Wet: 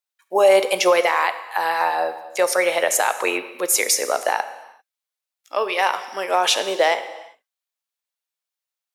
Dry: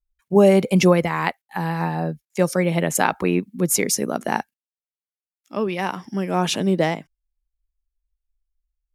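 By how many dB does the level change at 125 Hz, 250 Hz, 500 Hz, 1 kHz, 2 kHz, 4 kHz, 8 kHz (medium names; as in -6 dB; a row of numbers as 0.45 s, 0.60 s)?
under -30 dB, -13.5 dB, +1.5 dB, +5.0 dB, +5.0 dB, +6.5 dB, +3.5 dB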